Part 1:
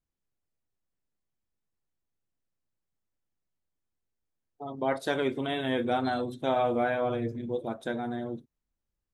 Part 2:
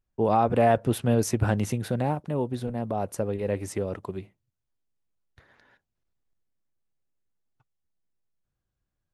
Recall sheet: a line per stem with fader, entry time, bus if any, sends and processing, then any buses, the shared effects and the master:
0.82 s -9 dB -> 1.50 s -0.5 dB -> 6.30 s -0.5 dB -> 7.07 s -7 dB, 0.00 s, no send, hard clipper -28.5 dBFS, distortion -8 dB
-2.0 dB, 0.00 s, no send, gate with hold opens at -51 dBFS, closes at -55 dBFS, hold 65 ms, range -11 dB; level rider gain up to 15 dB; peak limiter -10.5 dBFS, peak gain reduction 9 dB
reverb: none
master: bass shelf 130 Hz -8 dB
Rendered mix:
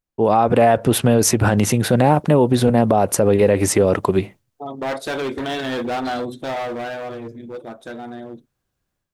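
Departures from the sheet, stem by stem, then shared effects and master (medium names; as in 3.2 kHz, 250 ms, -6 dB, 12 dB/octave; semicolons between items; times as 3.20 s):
stem 1 -9.0 dB -> 0.0 dB; stem 2 -2.0 dB -> +7.0 dB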